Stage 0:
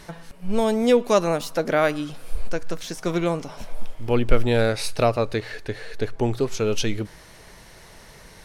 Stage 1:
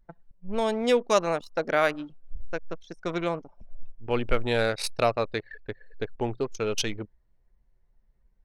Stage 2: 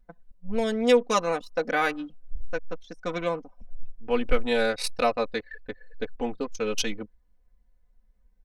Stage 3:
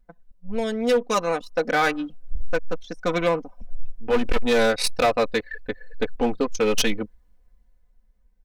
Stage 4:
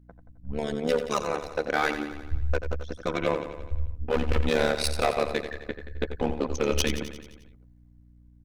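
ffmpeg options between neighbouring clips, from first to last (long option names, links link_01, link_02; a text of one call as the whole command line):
ffmpeg -i in.wav -af "anlmdn=100,lowshelf=frequency=490:gain=-9.5" out.wav
ffmpeg -i in.wav -af "aecho=1:1:4:0.97,volume=-2.5dB" out.wav
ffmpeg -i in.wav -af "dynaudnorm=framelen=360:gausssize=9:maxgain=13dB,asoftclip=type=hard:threshold=-14.5dB" out.wav
ffmpeg -i in.wav -af "aecho=1:1:88|176|264|352|440|528|616:0.335|0.201|0.121|0.0724|0.0434|0.026|0.0156,tremolo=f=73:d=0.919,aeval=exprs='val(0)+0.00251*(sin(2*PI*60*n/s)+sin(2*PI*2*60*n/s)/2+sin(2*PI*3*60*n/s)/3+sin(2*PI*4*60*n/s)/4+sin(2*PI*5*60*n/s)/5)':channel_layout=same,volume=-1.5dB" out.wav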